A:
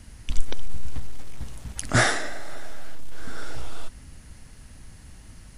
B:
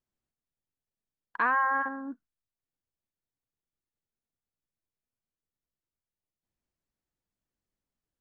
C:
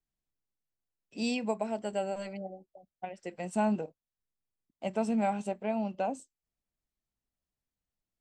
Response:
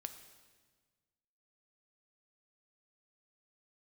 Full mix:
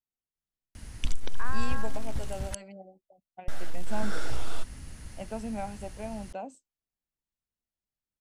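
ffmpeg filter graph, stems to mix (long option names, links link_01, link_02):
-filter_complex "[0:a]alimiter=limit=-15.5dB:level=0:latency=1:release=369,adelay=750,volume=1.5dB,asplit=3[link_01][link_02][link_03];[link_01]atrim=end=2.55,asetpts=PTS-STARTPTS,afade=type=out:start_time=2.546:duration=0.004:curve=hsin[link_04];[link_02]atrim=start=2.55:end=3.48,asetpts=PTS-STARTPTS,volume=0[link_05];[link_03]atrim=start=3.48,asetpts=PTS-STARTPTS,afade=type=in:duration=0.004:curve=hsin[link_06];[link_04][link_05][link_06]concat=n=3:v=0:a=1[link_07];[1:a]volume=-12dB[link_08];[2:a]adelay=350,volume=-6.5dB[link_09];[link_07][link_08][link_09]amix=inputs=3:normalize=0"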